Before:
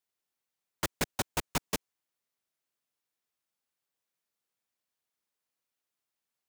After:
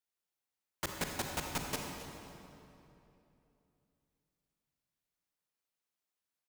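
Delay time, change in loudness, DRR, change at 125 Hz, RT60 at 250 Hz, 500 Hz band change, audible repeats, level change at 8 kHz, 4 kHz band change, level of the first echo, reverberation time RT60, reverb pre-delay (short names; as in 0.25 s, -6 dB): 0.268 s, -4.5 dB, 1.5 dB, -3.5 dB, 3.4 s, -4.0 dB, 1, -4.0 dB, -3.5 dB, -15.5 dB, 3.0 s, 34 ms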